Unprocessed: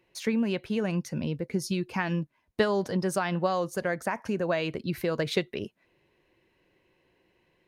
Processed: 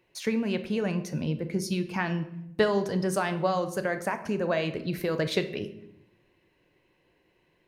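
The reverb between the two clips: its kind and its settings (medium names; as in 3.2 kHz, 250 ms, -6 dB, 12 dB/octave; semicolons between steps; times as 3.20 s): simulated room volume 230 m³, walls mixed, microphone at 0.38 m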